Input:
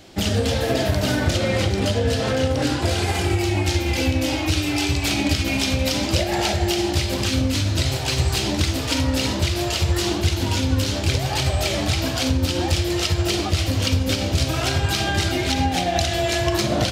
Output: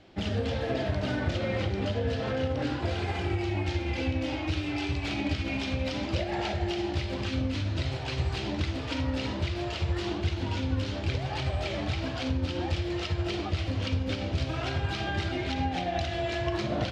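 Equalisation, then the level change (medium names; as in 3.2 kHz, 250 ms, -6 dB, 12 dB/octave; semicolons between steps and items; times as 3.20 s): low-pass 3.2 kHz 12 dB/octave; -8.5 dB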